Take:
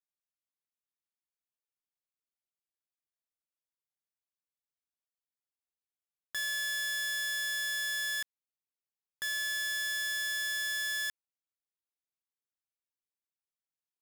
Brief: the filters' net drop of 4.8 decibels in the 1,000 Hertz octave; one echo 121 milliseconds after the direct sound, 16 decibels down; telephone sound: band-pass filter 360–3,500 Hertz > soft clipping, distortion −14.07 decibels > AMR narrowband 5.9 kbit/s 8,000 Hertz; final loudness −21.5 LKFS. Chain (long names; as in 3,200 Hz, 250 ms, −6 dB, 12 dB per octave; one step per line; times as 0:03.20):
band-pass filter 360–3,500 Hz
parametric band 1,000 Hz −5.5 dB
single-tap delay 121 ms −16 dB
soft clipping −36.5 dBFS
level +18 dB
AMR narrowband 5.9 kbit/s 8,000 Hz